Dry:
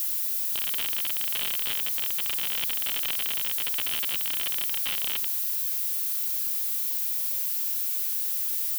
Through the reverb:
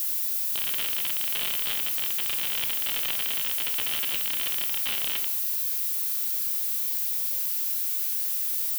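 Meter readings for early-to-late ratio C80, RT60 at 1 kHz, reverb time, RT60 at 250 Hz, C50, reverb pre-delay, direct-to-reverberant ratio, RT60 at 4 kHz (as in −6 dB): 13.5 dB, 0.65 s, 0.65 s, 0.60 s, 10.0 dB, 14 ms, 5.0 dB, 0.40 s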